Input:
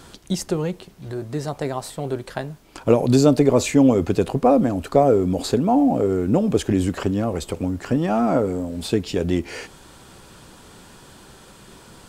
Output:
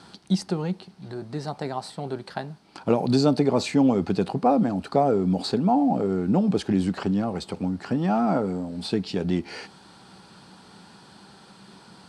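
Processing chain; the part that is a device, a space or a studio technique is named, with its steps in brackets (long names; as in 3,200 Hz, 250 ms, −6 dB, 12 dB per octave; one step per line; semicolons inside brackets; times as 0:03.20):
car door speaker (loudspeaker in its box 110–9,300 Hz, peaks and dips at 190 Hz +9 dB, 530 Hz −3 dB, 820 Hz +7 dB, 1,400 Hz +3 dB, 4,400 Hz +8 dB, 7,000 Hz −8 dB)
level −5.5 dB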